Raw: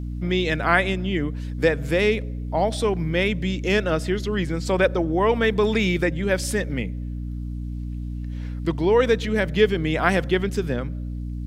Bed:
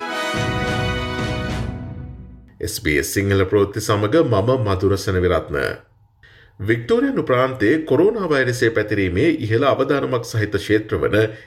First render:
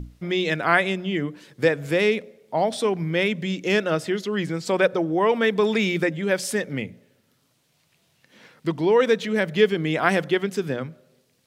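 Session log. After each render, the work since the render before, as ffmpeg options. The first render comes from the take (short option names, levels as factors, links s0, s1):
-af "bandreject=f=60:t=h:w=6,bandreject=f=120:t=h:w=6,bandreject=f=180:t=h:w=6,bandreject=f=240:t=h:w=6,bandreject=f=300:t=h:w=6"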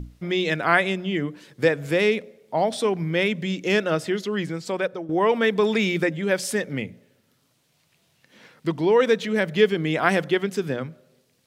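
-filter_complex "[0:a]asplit=2[s0][s1];[s0]atrim=end=5.09,asetpts=PTS-STARTPTS,afade=t=out:st=4.27:d=0.82:silence=0.266073[s2];[s1]atrim=start=5.09,asetpts=PTS-STARTPTS,afade=t=in:d=0.004:c=hsin:silence=0.266073[s3];[s2][s3]concat=n=2:v=0:a=1"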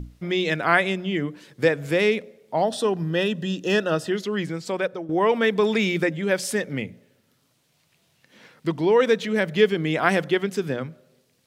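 -filter_complex "[0:a]asettb=1/sr,asplit=3[s0][s1][s2];[s0]atrim=end=2.624[s3];[s1]atrim=start=2.62:end=4.12,asetpts=PTS-STARTPTS,afade=t=in:d=0.004:c=qsin,afade=t=out:st=1.496:d=0.004:c=qsin,asuperstop=centerf=2200:order=8:qfactor=4.8[s4];[s2]atrim=start=4.116[s5];[s3][s4]acrossfade=d=0.004:c1=hsin:c2=qsin[s6];[s6][s5]acrossfade=d=0.004:c1=qsin:c2=hsin"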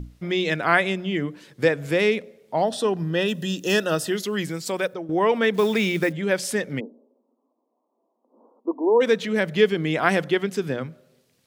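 -filter_complex "[0:a]asettb=1/sr,asplit=3[s0][s1][s2];[s0]atrim=end=3.284[s3];[s1]atrim=start=3.28:end=4.94,asetpts=PTS-STARTPTS,afade=t=in:d=0.004:c=qsin,afade=t=out:st=1.656:d=0.004:c=qsin,aemphasis=mode=production:type=50fm[s4];[s2]atrim=start=4.936[s5];[s3][s4]acrossfade=d=0.004:c1=hsin:c2=qsin[s6];[s6][s5]acrossfade=d=0.004:c1=qsin:c2=hsin,asettb=1/sr,asplit=3[s7][s8][s9];[s7]atrim=end=5.544[s10];[s8]atrim=start=5.54:end=6.13,asetpts=PTS-STARTPTS,afade=t=in:d=0.004:c=qsin,afade=t=out:st=0.586:d=0.004:c=qsin,acrusher=bits=6:mode=log:mix=0:aa=0.000001[s11];[s9]atrim=start=6.126[s12];[s10][s11]acrossfade=d=0.004:c1=hsin:c2=qsin[s13];[s13][s12]acrossfade=d=0.004:c1=qsin:c2=hsin,asplit=3[s14][s15][s16];[s14]afade=t=out:st=6.79:d=0.02[s17];[s15]asuperpass=centerf=500:order=20:qfactor=0.57,afade=t=in:st=6.79:d=0.02,afade=t=out:st=9:d=0.02[s18];[s16]afade=t=in:st=9:d=0.02[s19];[s17][s18][s19]amix=inputs=3:normalize=0"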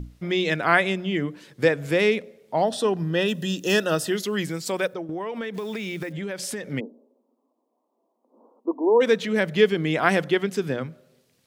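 -filter_complex "[0:a]asettb=1/sr,asplit=3[s0][s1][s2];[s0]atrim=end=5.024[s3];[s1]atrim=start=5.02:end=6.72,asetpts=PTS-STARTPTS,afade=t=in:d=0.004:c=qsin,afade=t=out:st=1.696:d=0.004:c=qsin,acompressor=threshold=0.0447:ratio=8:attack=3.2:release=140:knee=1:detection=peak[s4];[s2]atrim=start=6.716[s5];[s3][s4]acrossfade=d=0.004:c1=hsin:c2=qsin[s6];[s6][s5]acrossfade=d=0.004:c1=qsin:c2=hsin"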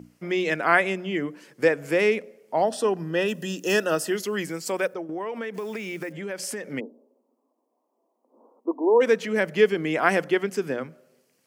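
-af "highpass=230,equalizer=f=3700:t=o:w=0.34:g=-11.5"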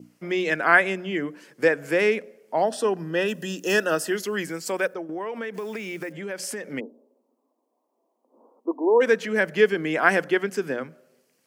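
-af "highpass=130,adynamicequalizer=threshold=0.00891:dfrequency=1600:dqfactor=4.9:tfrequency=1600:tqfactor=4.9:attack=5:release=100:ratio=0.375:range=3:mode=boostabove:tftype=bell"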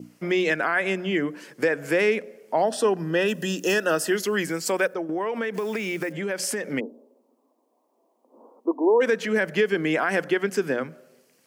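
-filter_complex "[0:a]asplit=2[s0][s1];[s1]acompressor=threshold=0.0282:ratio=6,volume=0.891[s2];[s0][s2]amix=inputs=2:normalize=0,alimiter=limit=0.251:level=0:latency=1:release=86"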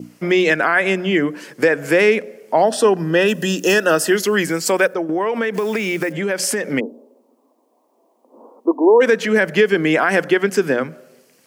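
-af "volume=2.37"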